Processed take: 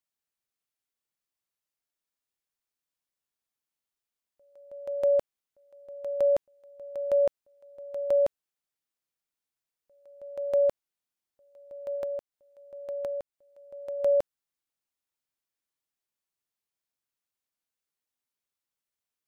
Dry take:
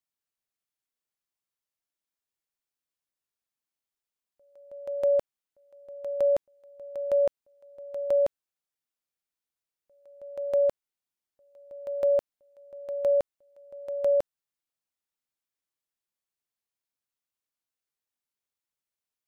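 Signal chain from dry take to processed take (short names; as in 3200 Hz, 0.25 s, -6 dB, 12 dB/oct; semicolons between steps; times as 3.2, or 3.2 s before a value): 11.95–14 compressor 12:1, threshold -31 dBFS, peak gain reduction 10.5 dB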